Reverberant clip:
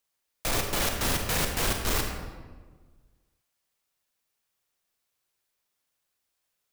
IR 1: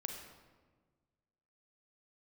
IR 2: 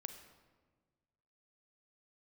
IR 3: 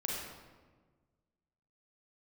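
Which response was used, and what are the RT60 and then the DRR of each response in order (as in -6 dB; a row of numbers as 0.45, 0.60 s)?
1; 1.4, 1.5, 1.4 s; 3.0, 7.5, -3.5 dB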